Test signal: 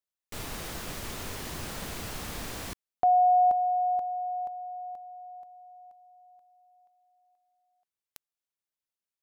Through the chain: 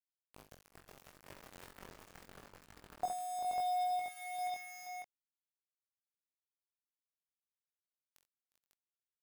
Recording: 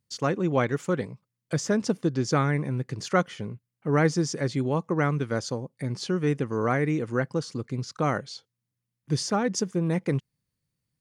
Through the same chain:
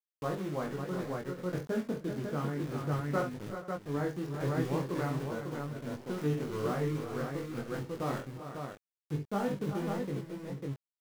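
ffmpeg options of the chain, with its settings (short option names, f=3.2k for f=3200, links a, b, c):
-filter_complex "[0:a]equalizer=f=2.8k:w=2:g=-7.5,acrossover=split=2000[a][b];[b]acompressor=threshold=-52dB:ratio=16:attack=1.5:release=47:detection=peak[c];[a][c]amix=inputs=2:normalize=0,aeval=exprs='val(0)*gte(abs(val(0)),0.0282)':c=same,asplit=2[d][e];[e]aecho=0:1:46|66|357|393|476|548:0.355|0.237|0.168|0.398|0.133|0.708[f];[d][f]amix=inputs=2:normalize=0,flanger=delay=20:depth=2.2:speed=0.31,tremolo=f=0.63:d=0.36,volume=-5.5dB"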